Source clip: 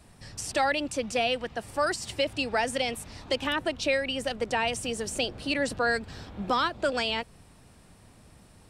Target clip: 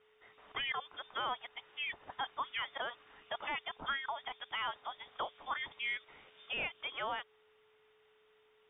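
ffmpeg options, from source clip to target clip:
-af "aderivative,lowpass=f=3.2k:t=q:w=0.5098,lowpass=f=3.2k:t=q:w=0.6013,lowpass=f=3.2k:t=q:w=0.9,lowpass=f=3.2k:t=q:w=2.563,afreqshift=-3800,aeval=exprs='val(0)+0.000282*sin(2*PI*430*n/s)':c=same,volume=3.5dB"

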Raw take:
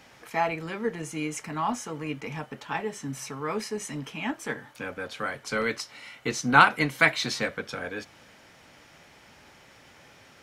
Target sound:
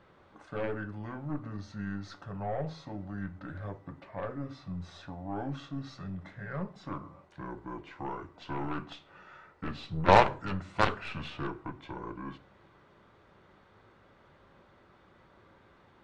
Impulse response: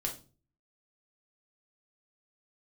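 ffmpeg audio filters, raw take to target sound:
-filter_complex "[0:a]aeval=exprs='0.668*(cos(1*acos(clip(val(0)/0.668,-1,1)))-cos(1*PI/2))+0.168*(cos(7*acos(clip(val(0)/0.668,-1,1)))-cos(7*PI/2))+0.0335*(cos(8*acos(clip(val(0)/0.668,-1,1)))-cos(8*PI/2))':c=same,aemphasis=mode=reproduction:type=75kf,asetrate=28665,aresample=44100,asplit=2[a][b];[1:a]atrim=start_sample=2205[c];[b][c]afir=irnorm=-1:irlink=0,volume=-11dB[d];[a][d]amix=inputs=2:normalize=0,volume=-4.5dB"

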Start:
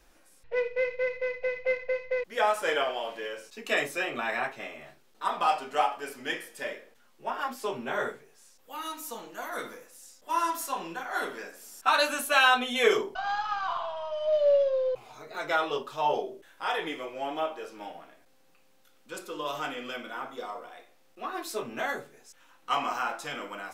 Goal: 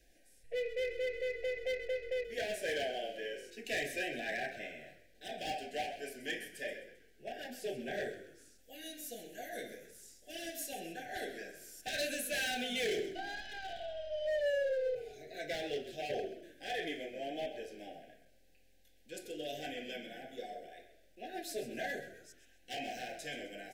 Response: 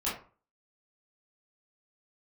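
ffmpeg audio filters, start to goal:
-filter_complex "[0:a]asplit=2[a][b];[1:a]atrim=start_sample=2205,asetrate=48510,aresample=44100[c];[b][c]afir=irnorm=-1:irlink=0,volume=-21dB[d];[a][d]amix=inputs=2:normalize=0,asoftclip=type=hard:threshold=-25.5dB,asuperstop=centerf=1100:order=20:qfactor=1.4,asplit=2[e][f];[f]asplit=4[g][h][i][j];[g]adelay=130,afreqshift=-44,volume=-12dB[k];[h]adelay=260,afreqshift=-88,volume=-20.4dB[l];[i]adelay=390,afreqshift=-132,volume=-28.8dB[m];[j]adelay=520,afreqshift=-176,volume=-37.2dB[n];[k][l][m][n]amix=inputs=4:normalize=0[o];[e][o]amix=inputs=2:normalize=0,volume=-6dB"

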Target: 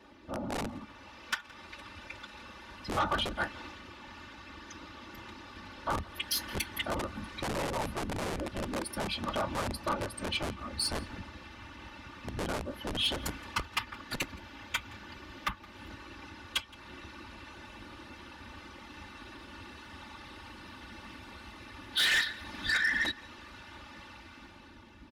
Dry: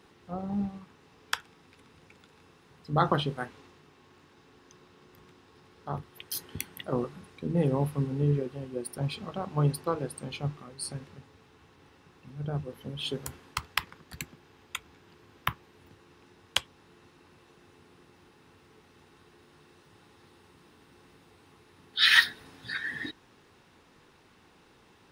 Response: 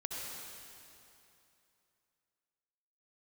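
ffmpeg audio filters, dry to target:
-filter_complex "[0:a]afftfilt=real='hypot(re,im)*cos(2*PI*random(0))':imag='hypot(re,im)*sin(2*PI*random(1))':win_size=512:overlap=0.75,highpass=50,equalizer=f=8.7k:w=1.1:g=-11.5,aecho=1:1:3.4:0.84,asubboost=boost=4:cutoff=220,asplit=2[a][b];[b]acompressor=threshold=-44dB:ratio=12,volume=2dB[c];[a][c]amix=inputs=2:normalize=0,alimiter=limit=-22.5dB:level=0:latency=1:release=219,acrossover=split=600[d][e];[d]aeval=exprs='(mod(28.2*val(0)+1,2)-1)/28.2':c=same[f];[e]dynaudnorm=f=210:g=9:m=11dB[g];[f][g]amix=inputs=2:normalize=0,lowpass=f=12k:w=0.5412,lowpass=f=12k:w=1.3066,asoftclip=type=tanh:threshold=-23dB,asplit=2[h][i];[i]adelay=169.1,volume=-22dB,highshelf=f=4k:g=-3.8[j];[h][j]amix=inputs=2:normalize=0"

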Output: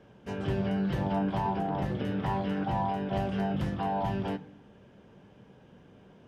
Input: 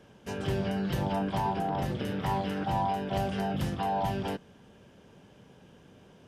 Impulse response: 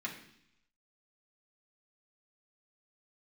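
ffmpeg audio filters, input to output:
-filter_complex "[0:a]lowpass=f=2.2k:p=1,asplit=2[a][b];[1:a]atrim=start_sample=2205,adelay=11[c];[b][c]afir=irnorm=-1:irlink=0,volume=-11dB[d];[a][d]amix=inputs=2:normalize=0"

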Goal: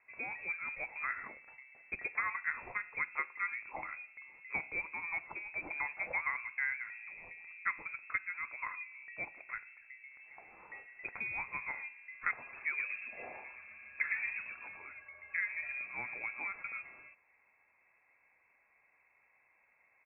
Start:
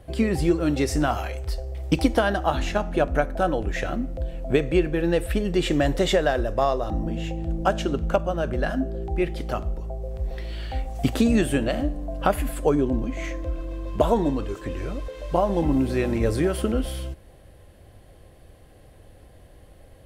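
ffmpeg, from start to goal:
-filter_complex "[0:a]highpass=f=990:p=1,asplit=3[a][b][c];[a]afade=t=out:st=12.52:d=0.02[d];[b]asplit=5[e][f][g][h][i];[f]adelay=115,afreqshift=-130,volume=-4dB[j];[g]adelay=230,afreqshift=-260,volume=-14.5dB[k];[h]adelay=345,afreqshift=-390,volume=-24.9dB[l];[i]adelay=460,afreqshift=-520,volume=-35.4dB[m];[e][j][k][l][m]amix=inputs=5:normalize=0,afade=t=in:st=12.52:d=0.02,afade=t=out:st=14.75:d=0.02[n];[c]afade=t=in:st=14.75:d=0.02[o];[d][n][o]amix=inputs=3:normalize=0,lowpass=f=2.3k:t=q:w=0.5098,lowpass=f=2.3k:t=q:w=0.6013,lowpass=f=2.3k:t=q:w=0.9,lowpass=f=2.3k:t=q:w=2.563,afreqshift=-2700,volume=-9dB"

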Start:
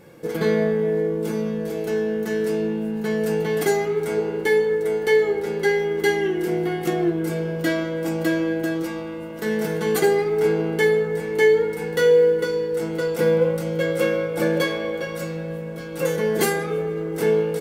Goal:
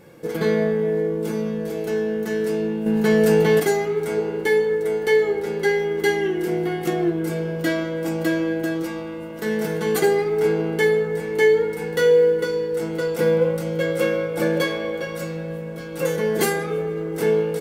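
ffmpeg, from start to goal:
-filter_complex "[0:a]asettb=1/sr,asplit=3[a][b][c];[a]atrim=end=2.864[d];[b]atrim=start=2.86:end=3.6,asetpts=PTS-STARTPTS,afade=t=in:d=0.004:c=qsin,afade=t=out:st=0.736:d=0.004:c=qsin,acontrast=79[e];[c]atrim=start=3.596[f];[d][e]acrossfade=d=0.004:c1=hsin:c2=qsin[g];[g][f]acrossfade=d=0.004:c1=qsin:c2=hsin"

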